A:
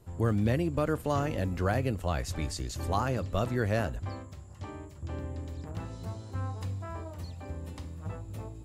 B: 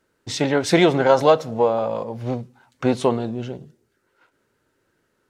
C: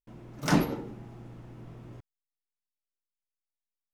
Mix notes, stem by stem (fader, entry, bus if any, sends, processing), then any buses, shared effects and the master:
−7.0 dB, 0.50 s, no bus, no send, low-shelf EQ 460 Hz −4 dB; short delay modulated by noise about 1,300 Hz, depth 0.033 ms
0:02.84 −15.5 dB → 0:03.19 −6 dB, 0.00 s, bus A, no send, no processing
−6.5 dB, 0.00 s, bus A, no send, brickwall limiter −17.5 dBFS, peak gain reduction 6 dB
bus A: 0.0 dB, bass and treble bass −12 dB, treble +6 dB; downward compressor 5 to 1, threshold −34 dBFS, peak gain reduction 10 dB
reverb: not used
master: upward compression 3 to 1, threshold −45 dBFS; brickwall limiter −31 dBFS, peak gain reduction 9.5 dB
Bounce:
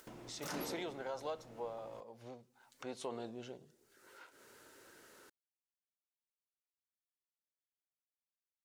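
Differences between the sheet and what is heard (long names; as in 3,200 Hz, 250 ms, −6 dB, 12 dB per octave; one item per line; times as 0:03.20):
stem A: muted
stem B −15.5 dB → −24.0 dB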